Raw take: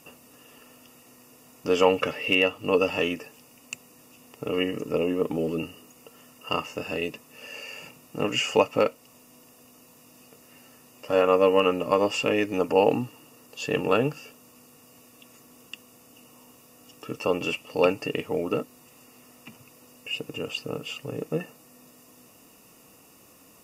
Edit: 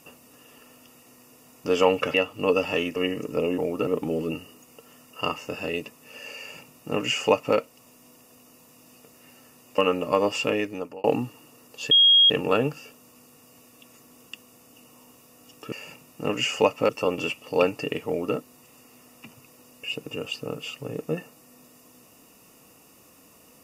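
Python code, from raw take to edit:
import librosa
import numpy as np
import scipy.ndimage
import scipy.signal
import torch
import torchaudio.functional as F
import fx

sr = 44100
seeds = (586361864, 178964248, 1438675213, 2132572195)

y = fx.edit(x, sr, fx.cut(start_s=2.14, length_s=0.25),
    fx.cut(start_s=3.21, length_s=1.32),
    fx.duplicate(start_s=7.67, length_s=1.17, to_s=17.12),
    fx.cut(start_s=11.06, length_s=0.51),
    fx.fade_out_span(start_s=12.26, length_s=0.57),
    fx.insert_tone(at_s=13.7, length_s=0.39, hz=3270.0, db=-12.5),
    fx.duplicate(start_s=18.3, length_s=0.29, to_s=5.15), tone=tone)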